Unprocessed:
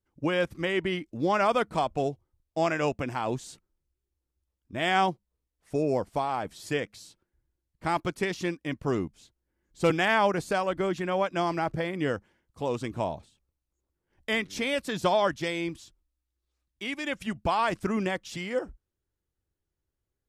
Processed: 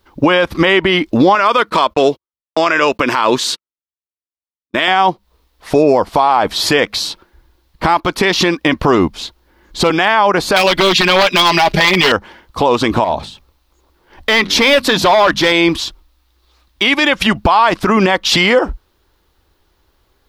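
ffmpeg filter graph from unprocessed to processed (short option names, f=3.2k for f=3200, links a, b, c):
-filter_complex "[0:a]asettb=1/sr,asplit=3[a][b][c];[a]atrim=end=1.354[d];[b]atrim=start=1.35:end=4.88,asetpts=PTS-STARTPTS,afade=t=in:d=0.004:c=qsin,afade=t=out:st=3.526:d=0.004:c=qsin,highpass=f=380:p=1,agate=range=-44dB:threshold=-50dB:ratio=16:release=100:detection=peak,equalizer=f=760:t=o:w=0.38:g=-13[e];[c]atrim=start=4.876[f];[d][e]acrossfade=d=0.004:c1=hsin:c2=qsin[g];[g][f]acrossfade=d=0.004:c1=qsin:c2=hsin,asettb=1/sr,asplit=3[h][i][j];[h]atrim=end=10.564[k];[i]atrim=start=10.56:end=12.12,asetpts=PTS-STARTPTS,afade=t=in:d=0.004:c=qsin,afade=t=out:st=1.556:d=0.004:c=qsin,highshelf=f=1.8k:t=q:w=1.5:g=10,aecho=1:1:4.9:0.86,atrim=end_sample=68796,aeval=exprs='0.1*(abs(mod(val(0)/0.1+3,4)-2)-1)':c=same[l];[j]atrim=start=12.116[m];[k][l]acrossfade=d=0.004:c1=hsin:c2=qsin[n];[n][m]acrossfade=d=0.004:c1=qsin:c2=hsin,asettb=1/sr,asplit=3[o][p][q];[o]atrim=end=13.044[r];[p]atrim=start=13.04:end=15.52,asetpts=PTS-STARTPTS,afade=t=in:d=0.004:c=qsin,afade=t=out:st=2.476:d=0.004:c=qsin,bandreject=f=50:t=h:w=6,bandreject=f=100:t=h:w=6,bandreject=f=150:t=h:w=6,bandreject=f=200:t=h:w=6,bandreject=f=250:t=h:w=6,acompressor=threshold=-44dB:ratio=1.5:attack=3.2:release=140:knee=1:detection=peak,asoftclip=type=hard:threshold=-32dB[s];[q]atrim=start=15.516[t];[r][s]acrossfade=d=0.004:c1=hsin:c2=qsin[u];[u][t]acrossfade=d=0.004:c1=qsin:c2=hsin,equalizer=f=125:t=o:w=1:g=-9,equalizer=f=1k:t=o:w=1:g=8,equalizer=f=4k:t=o:w=1:g=8,equalizer=f=8k:t=o:w=1:g=-8,acompressor=threshold=-30dB:ratio=6,alimiter=level_in=27.5dB:limit=-1dB:release=50:level=0:latency=1,volume=-1dB"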